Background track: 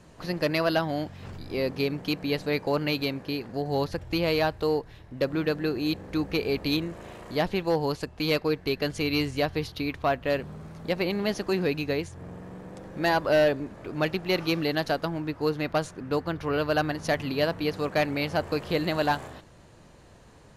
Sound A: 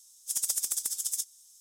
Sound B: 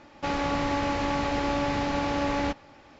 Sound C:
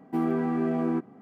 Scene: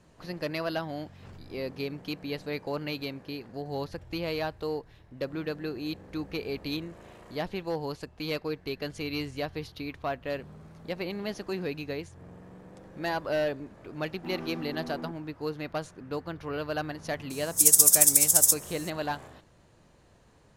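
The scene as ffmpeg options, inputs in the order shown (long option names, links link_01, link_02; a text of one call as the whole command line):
ffmpeg -i bed.wav -i cue0.wav -i cue1.wav -i cue2.wav -filter_complex "[0:a]volume=-7dB[link_01];[3:a]asoftclip=type=tanh:threshold=-27.5dB[link_02];[1:a]crystalizer=i=9:c=0[link_03];[link_02]atrim=end=1.21,asetpts=PTS-STARTPTS,volume=-8.5dB,afade=type=in:duration=0.004:curve=hsin,afade=type=out:start_time=1.206:duration=0.004:curve=hsin,adelay=14110[link_04];[link_03]atrim=end=1.6,asetpts=PTS-STARTPTS,volume=-9dB,afade=type=in:duration=0.004:curve=hsin,afade=type=out:start_time=1.596:duration=0.004:curve=hsin,adelay=17300[link_05];[link_01][link_04][link_05]amix=inputs=3:normalize=0" out.wav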